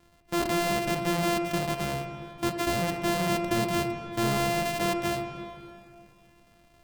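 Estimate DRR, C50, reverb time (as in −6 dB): 6.0 dB, 7.0 dB, 2.5 s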